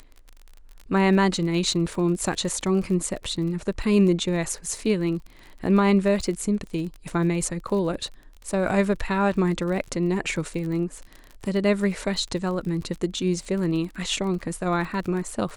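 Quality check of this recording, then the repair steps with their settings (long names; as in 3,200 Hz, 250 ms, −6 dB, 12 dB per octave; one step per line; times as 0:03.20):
surface crackle 32 per second −32 dBFS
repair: click removal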